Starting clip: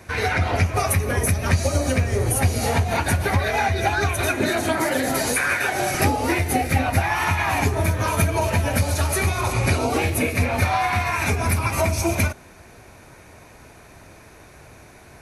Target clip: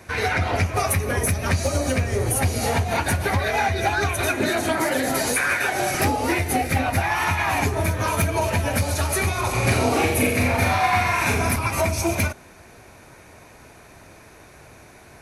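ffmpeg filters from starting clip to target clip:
-filter_complex "[0:a]lowshelf=f=130:g=-3.5,volume=5.01,asoftclip=hard,volume=0.2,asettb=1/sr,asplit=3[s0][s1][s2];[s0]atrim=end=9.494[s3];[s1]atrim=start=9.49:end=11.56,asetpts=PTS-STARTPTS,afade=t=in:d=0.004:c=qsin,afade=t=out:st=2.066:d=0.004:c=qsin,aecho=1:1:40|84|132.4|185.6|244.2:0.631|0.398|0.251|0.158|0.1,atrim=end_sample=91287[s4];[s2]atrim=start=11.556[s5];[s3][s4]acrossfade=d=0.004:c1=hsin:c2=qsin[s6];[s6][s5]acrossfade=d=0.004:c1=qsin:c2=hsin"

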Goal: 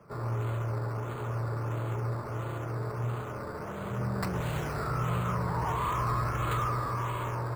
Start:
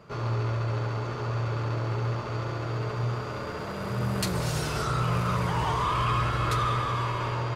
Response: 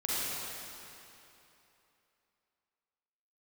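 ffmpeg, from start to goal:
-filter_complex "[0:a]acrossover=split=110|560|1900[s0][s1][s2][s3];[s3]acrusher=samples=11:mix=1:aa=0.000001:lfo=1:lforange=6.6:lforate=1.5[s4];[s0][s1][s2][s4]amix=inputs=4:normalize=0,volume=0.668"

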